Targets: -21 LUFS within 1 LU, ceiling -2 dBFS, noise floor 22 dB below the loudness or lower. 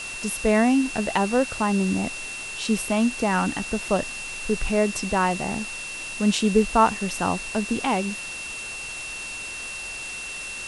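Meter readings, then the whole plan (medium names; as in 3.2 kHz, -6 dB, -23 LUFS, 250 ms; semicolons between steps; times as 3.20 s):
steady tone 2.7 kHz; tone level -33 dBFS; noise floor -34 dBFS; noise floor target -47 dBFS; loudness -24.5 LUFS; peak level -6.0 dBFS; loudness target -21.0 LUFS
-> band-stop 2.7 kHz, Q 30; noise reduction 13 dB, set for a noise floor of -34 dBFS; trim +3.5 dB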